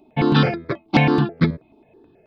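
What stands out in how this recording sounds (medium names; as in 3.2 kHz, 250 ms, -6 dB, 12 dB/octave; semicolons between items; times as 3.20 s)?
notches that jump at a steady rate 9.3 Hz 480–2800 Hz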